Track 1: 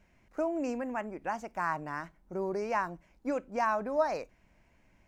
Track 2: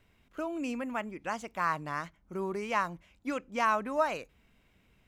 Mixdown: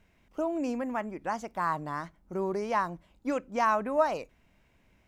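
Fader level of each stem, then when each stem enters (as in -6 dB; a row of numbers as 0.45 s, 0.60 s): -2.0 dB, -3.5 dB; 0.00 s, 0.00 s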